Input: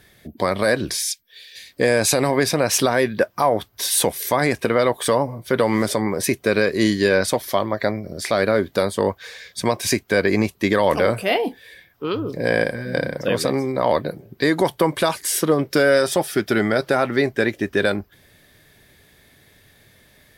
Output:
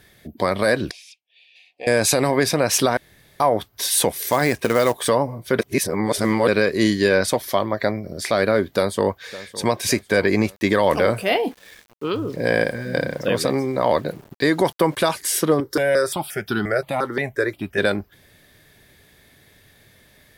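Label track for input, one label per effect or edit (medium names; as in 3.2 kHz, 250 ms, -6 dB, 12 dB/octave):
0.910000	1.870000	two resonant band-passes 1.4 kHz, apart 1.8 oct
2.970000	3.400000	room tone
4.110000	5.090000	short-mantissa float mantissa of 2-bit
5.590000	6.480000	reverse
8.700000	9.690000	echo throw 560 ms, feedback 55%, level -17 dB
10.560000	15.090000	small samples zeroed under -43 dBFS
15.600000	17.780000	stepped phaser 5.7 Hz 670–2100 Hz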